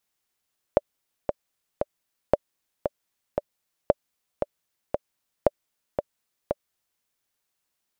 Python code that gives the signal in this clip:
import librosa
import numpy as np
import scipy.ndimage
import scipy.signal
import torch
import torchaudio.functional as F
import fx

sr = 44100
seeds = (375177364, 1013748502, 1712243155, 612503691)

y = fx.click_track(sr, bpm=115, beats=3, bars=4, hz=583.0, accent_db=7.0, level_db=-3.5)